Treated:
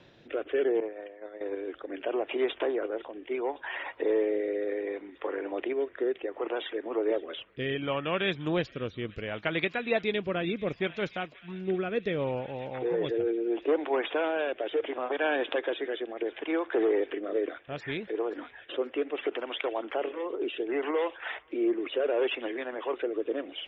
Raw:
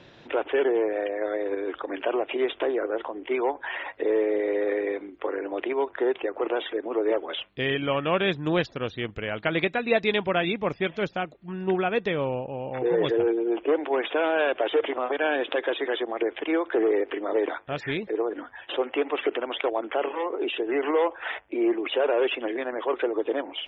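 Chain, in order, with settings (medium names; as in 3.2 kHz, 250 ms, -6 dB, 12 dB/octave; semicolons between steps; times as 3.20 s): feedback echo behind a high-pass 532 ms, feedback 78%, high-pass 1.7 kHz, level -18 dB; 0.80–1.41 s: expander -18 dBFS; rotary cabinet horn 0.7 Hz; trim -2.5 dB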